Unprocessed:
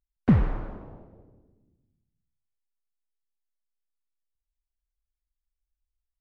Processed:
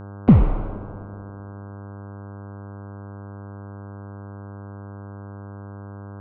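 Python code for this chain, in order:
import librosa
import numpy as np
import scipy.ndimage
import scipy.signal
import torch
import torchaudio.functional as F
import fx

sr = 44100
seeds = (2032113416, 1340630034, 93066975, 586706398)

y = scipy.signal.sosfilt(scipy.signal.butter(2, 3000.0, 'lowpass', fs=sr, output='sos'), x)
y = fx.peak_eq(y, sr, hz=1700.0, db=-13.5, octaves=0.47)
y = fx.dmg_buzz(y, sr, base_hz=100.0, harmonics=16, level_db=-44.0, tilt_db=-6, odd_only=False)
y = fx.echo_wet_bandpass(y, sr, ms=99, feedback_pct=78, hz=710.0, wet_db=-21.5)
y = y * 10.0 ** (7.0 / 20.0)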